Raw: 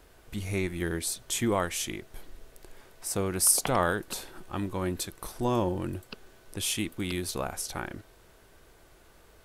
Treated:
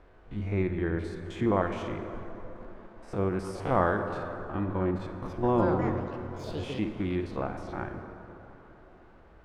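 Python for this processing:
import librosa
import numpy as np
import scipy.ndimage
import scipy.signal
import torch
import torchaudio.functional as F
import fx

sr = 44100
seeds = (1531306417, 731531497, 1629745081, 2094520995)

y = fx.spec_steps(x, sr, hold_ms=50)
y = fx.quant_dither(y, sr, seeds[0], bits=10, dither='none')
y = scipy.signal.sosfilt(scipy.signal.butter(2, 1600.0, 'lowpass', fs=sr, output='sos'), y)
y = fx.echo_pitch(y, sr, ms=310, semitones=6, count=2, db_per_echo=-6.0, at=(4.91, 7.12))
y = fx.rev_plate(y, sr, seeds[1], rt60_s=3.9, hf_ratio=0.45, predelay_ms=0, drr_db=6.5)
y = y * 10.0 ** (2.0 / 20.0)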